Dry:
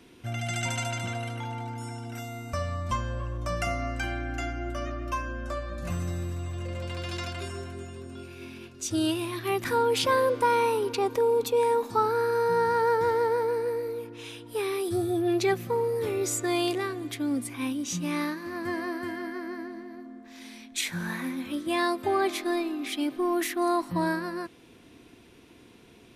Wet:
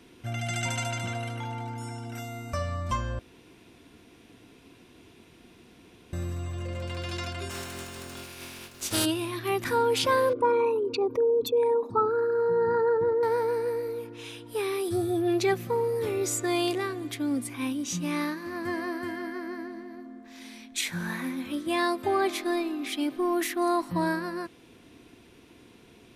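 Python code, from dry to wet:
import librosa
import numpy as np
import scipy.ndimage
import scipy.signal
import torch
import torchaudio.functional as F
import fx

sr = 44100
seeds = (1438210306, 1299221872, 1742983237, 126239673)

y = fx.spec_flatten(x, sr, power=0.45, at=(7.49, 9.04), fade=0.02)
y = fx.envelope_sharpen(y, sr, power=2.0, at=(10.33, 13.23))
y = fx.edit(y, sr, fx.room_tone_fill(start_s=3.19, length_s=2.94), tone=tone)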